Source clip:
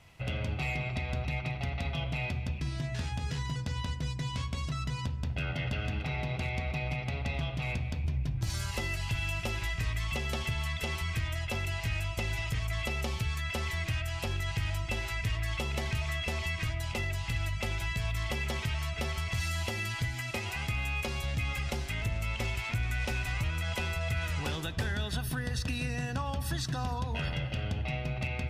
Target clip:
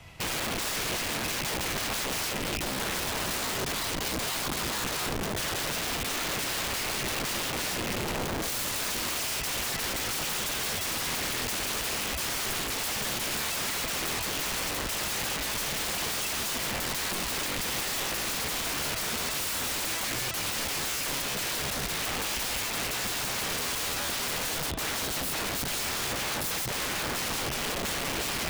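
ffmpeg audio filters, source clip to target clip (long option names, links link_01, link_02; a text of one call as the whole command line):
ffmpeg -i in.wav -filter_complex "[0:a]acrossover=split=210|1100|3000[link_01][link_02][link_03][link_04];[link_03]alimiter=level_in=12dB:limit=-24dB:level=0:latency=1:release=403,volume=-12dB[link_05];[link_01][link_02][link_05][link_04]amix=inputs=4:normalize=0,aeval=exprs='(mod(56.2*val(0)+1,2)-1)/56.2':channel_layout=same,volume=8.5dB" out.wav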